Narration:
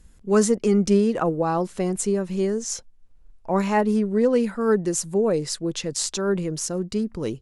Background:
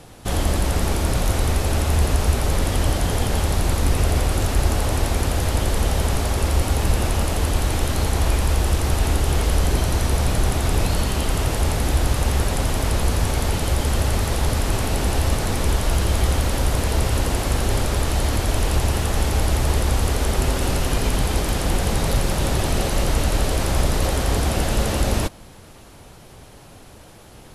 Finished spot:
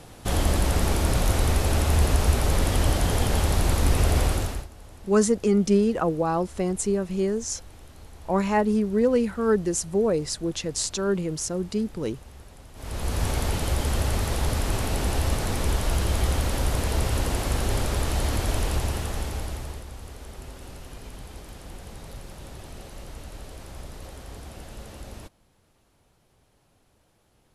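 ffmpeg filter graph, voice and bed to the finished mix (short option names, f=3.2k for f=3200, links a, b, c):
-filter_complex "[0:a]adelay=4800,volume=-1.5dB[a];[1:a]volume=19.5dB,afade=t=out:st=4.26:d=0.41:silence=0.0630957,afade=t=in:st=12.74:d=0.52:silence=0.0841395,afade=t=out:st=18.51:d=1.35:silence=0.158489[b];[a][b]amix=inputs=2:normalize=0"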